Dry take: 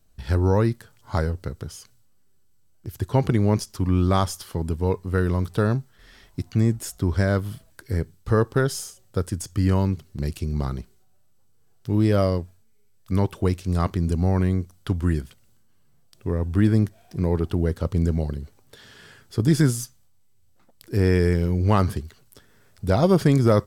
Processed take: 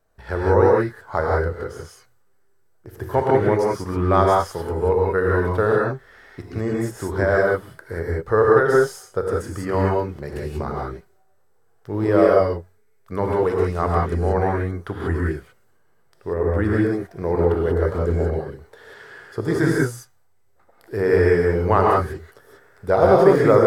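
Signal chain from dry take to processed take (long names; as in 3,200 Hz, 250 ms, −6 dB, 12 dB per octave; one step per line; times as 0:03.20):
de-essing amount 50%
flat-topped bell 860 Hz +13.5 dB 2.8 octaves
reverb whose tail is shaped and stops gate 210 ms rising, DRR −3 dB
level −9 dB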